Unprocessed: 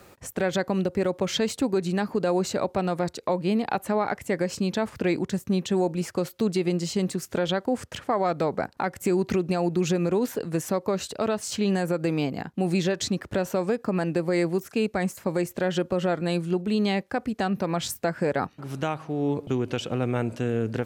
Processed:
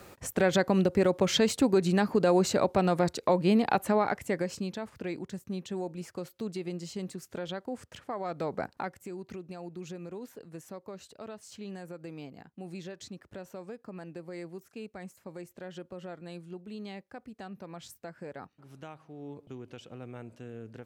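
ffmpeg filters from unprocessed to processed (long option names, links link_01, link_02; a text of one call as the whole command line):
ffmpeg -i in.wav -af "volume=7dB,afade=type=out:start_time=3.75:duration=1.04:silence=0.251189,afade=type=in:start_time=8.23:duration=0.48:silence=0.473151,afade=type=out:start_time=8.71:duration=0.32:silence=0.237137" out.wav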